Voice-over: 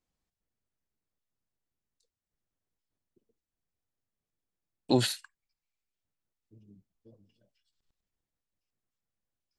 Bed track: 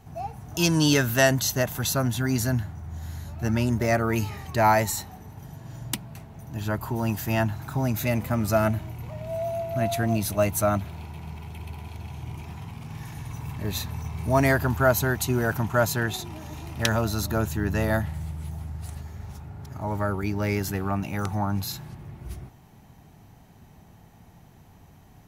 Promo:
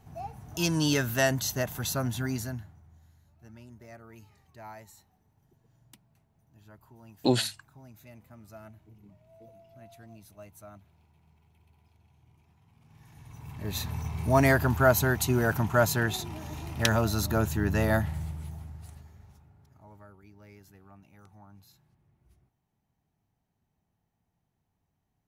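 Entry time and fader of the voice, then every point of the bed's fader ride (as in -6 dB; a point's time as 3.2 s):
2.35 s, +1.0 dB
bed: 2.25 s -5.5 dB
3.16 s -26 dB
12.61 s -26 dB
13.88 s -1 dB
18.17 s -1 dB
20.16 s -27 dB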